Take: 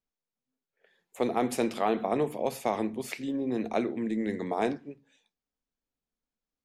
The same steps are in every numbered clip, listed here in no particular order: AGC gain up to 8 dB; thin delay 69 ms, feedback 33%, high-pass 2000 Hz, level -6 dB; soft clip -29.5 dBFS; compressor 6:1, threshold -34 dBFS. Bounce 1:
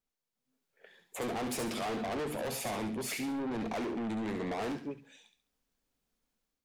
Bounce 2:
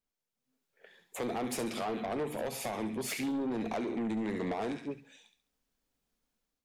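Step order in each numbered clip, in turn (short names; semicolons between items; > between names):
AGC > soft clip > compressor > thin delay; thin delay > compressor > AGC > soft clip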